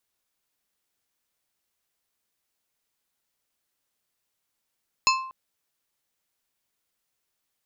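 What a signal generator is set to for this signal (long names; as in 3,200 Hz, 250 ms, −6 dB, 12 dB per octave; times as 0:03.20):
struck glass plate, length 0.24 s, lowest mode 1,050 Hz, decay 0.67 s, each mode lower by 1 dB, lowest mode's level −18 dB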